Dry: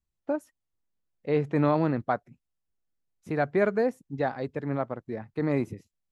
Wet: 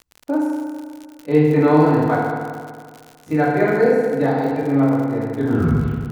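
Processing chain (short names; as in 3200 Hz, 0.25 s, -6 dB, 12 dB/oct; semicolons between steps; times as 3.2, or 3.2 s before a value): tape stop at the end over 0.80 s; FDN reverb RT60 1.9 s, low-frequency decay 1×, high-frequency decay 0.75×, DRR -8.5 dB; crackle 94/s -29 dBFS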